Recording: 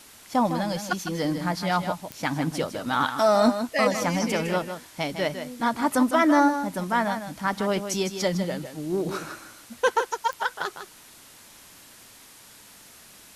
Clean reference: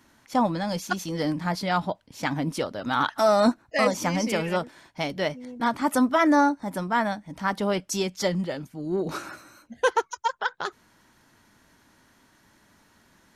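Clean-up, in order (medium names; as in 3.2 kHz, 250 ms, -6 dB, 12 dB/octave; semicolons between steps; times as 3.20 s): de-click; noise print and reduce 11 dB; inverse comb 156 ms -9 dB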